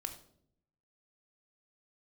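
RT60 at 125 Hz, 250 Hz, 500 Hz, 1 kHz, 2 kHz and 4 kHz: 1.1 s, 1.0 s, 0.80 s, 0.55 s, 0.45 s, 0.45 s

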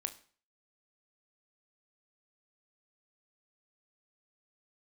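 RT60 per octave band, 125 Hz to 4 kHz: 0.50 s, 0.45 s, 0.45 s, 0.45 s, 0.45 s, 0.40 s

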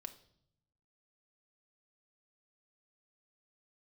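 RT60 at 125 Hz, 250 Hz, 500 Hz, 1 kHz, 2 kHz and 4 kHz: 1.3 s, 1.1 s, 0.75 s, 0.60 s, 0.55 s, 0.65 s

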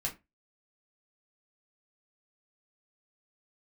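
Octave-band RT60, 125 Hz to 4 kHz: 0.25 s, 0.25 s, 0.25 s, 0.20 s, 0.20 s, 0.15 s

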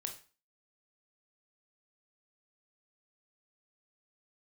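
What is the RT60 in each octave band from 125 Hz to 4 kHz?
0.35 s, 0.35 s, 0.35 s, 0.40 s, 0.35 s, 0.35 s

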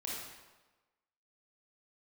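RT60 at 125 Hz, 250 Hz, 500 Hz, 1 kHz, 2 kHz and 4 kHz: 1.1 s, 1.1 s, 1.2 s, 1.2 s, 1.0 s, 0.95 s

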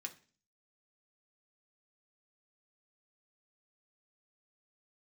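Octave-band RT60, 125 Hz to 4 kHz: 0.55 s, 0.55 s, 0.40 s, 0.35 s, 0.40 s, 0.45 s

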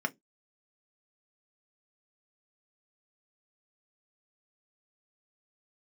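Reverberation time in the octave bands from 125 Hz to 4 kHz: 0.25 s, 0.25 s, 0.20 s, 0.10 s, 0.15 s, 0.15 s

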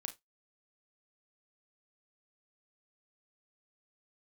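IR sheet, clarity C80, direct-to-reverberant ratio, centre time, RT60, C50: 27.0 dB, 5.5 dB, 10 ms, 0.15 s, 16.0 dB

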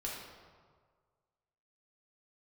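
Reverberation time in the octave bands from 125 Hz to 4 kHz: 1.8 s, 1.5 s, 1.7 s, 1.7 s, 1.2 s, 1.0 s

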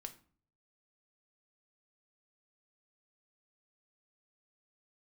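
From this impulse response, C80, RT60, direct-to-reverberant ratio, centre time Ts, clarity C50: 19.5 dB, 0.45 s, 6.0 dB, 6 ms, 14.5 dB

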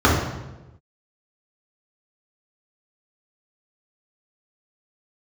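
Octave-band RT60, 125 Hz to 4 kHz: 1.3 s, 1.2 s, 1.2 s, 0.95 s, 0.90 s, 0.80 s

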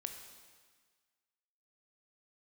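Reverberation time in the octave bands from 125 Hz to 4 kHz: 1.5 s, 1.5 s, 1.5 s, 1.6 s, 1.6 s, 1.5 s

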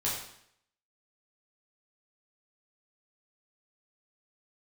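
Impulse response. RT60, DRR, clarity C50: 0.70 s, -6.5 dB, 3.0 dB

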